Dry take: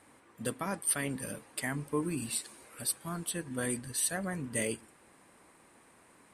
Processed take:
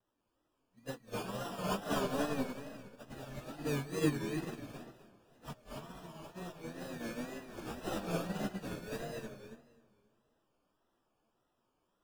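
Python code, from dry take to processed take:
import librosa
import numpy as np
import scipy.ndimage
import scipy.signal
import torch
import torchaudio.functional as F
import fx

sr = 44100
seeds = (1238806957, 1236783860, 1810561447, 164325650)

p1 = fx.high_shelf(x, sr, hz=5900.0, db=-5.5)
p2 = fx.sample_hold(p1, sr, seeds[0], rate_hz=2100.0, jitter_pct=0)
p3 = fx.rev_freeverb(p2, sr, rt60_s=0.82, hf_ratio=0.5, predelay_ms=80, drr_db=-2.5)
p4 = fx.stretch_vocoder_free(p3, sr, factor=1.9)
p5 = p4 + fx.echo_feedback(p4, sr, ms=267, feedback_pct=41, wet_db=-4.5, dry=0)
p6 = fx.wow_flutter(p5, sr, seeds[1], rate_hz=2.1, depth_cents=120.0)
p7 = fx.upward_expand(p6, sr, threshold_db=-42.0, expansion=2.5)
y = p7 * 10.0 ** (1.5 / 20.0)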